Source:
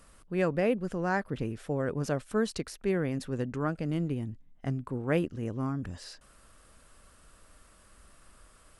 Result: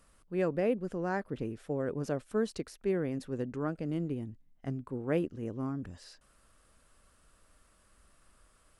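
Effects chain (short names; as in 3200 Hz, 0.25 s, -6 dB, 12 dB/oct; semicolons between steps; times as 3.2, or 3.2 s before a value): dynamic EQ 370 Hz, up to +6 dB, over -40 dBFS, Q 0.7; gain -7 dB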